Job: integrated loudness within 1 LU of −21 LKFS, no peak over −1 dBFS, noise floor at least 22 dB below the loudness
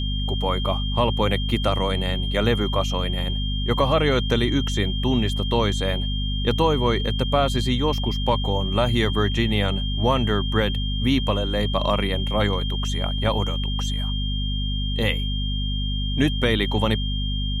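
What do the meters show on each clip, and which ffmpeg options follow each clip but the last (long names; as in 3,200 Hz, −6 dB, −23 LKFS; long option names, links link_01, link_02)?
mains hum 50 Hz; hum harmonics up to 250 Hz; level of the hum −23 dBFS; interfering tone 3,200 Hz; level of the tone −30 dBFS; integrated loudness −23.0 LKFS; sample peak −6.0 dBFS; target loudness −21.0 LKFS
→ -af "bandreject=frequency=50:width_type=h:width=6,bandreject=frequency=100:width_type=h:width=6,bandreject=frequency=150:width_type=h:width=6,bandreject=frequency=200:width_type=h:width=6,bandreject=frequency=250:width_type=h:width=6"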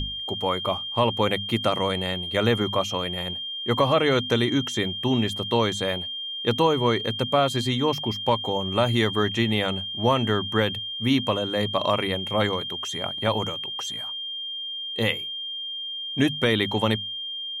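mains hum none found; interfering tone 3,200 Hz; level of the tone −30 dBFS
→ -af "bandreject=frequency=3200:width=30"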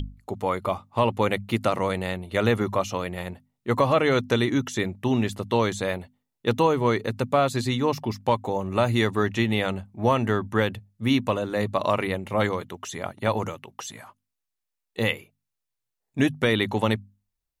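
interfering tone none found; integrated loudness −25.0 LKFS; sample peak −7.5 dBFS; target loudness −21.0 LKFS
→ -af "volume=4dB"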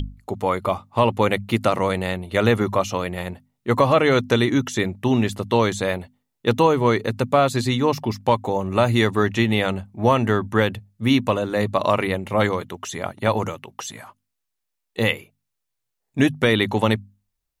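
integrated loudness −21.0 LKFS; sample peak −3.5 dBFS; background noise floor −79 dBFS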